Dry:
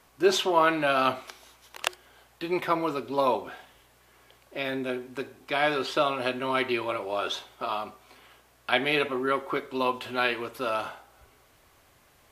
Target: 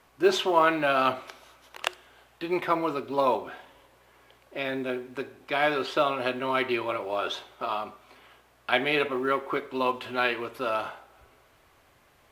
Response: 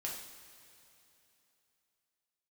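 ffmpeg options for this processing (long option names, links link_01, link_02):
-filter_complex "[0:a]acrusher=bits=8:mode=log:mix=0:aa=0.000001,bass=frequency=250:gain=-2,treble=frequency=4000:gain=-6,asplit=2[link_01][link_02];[1:a]atrim=start_sample=2205[link_03];[link_02][link_03]afir=irnorm=-1:irlink=0,volume=-19.5dB[link_04];[link_01][link_04]amix=inputs=2:normalize=0"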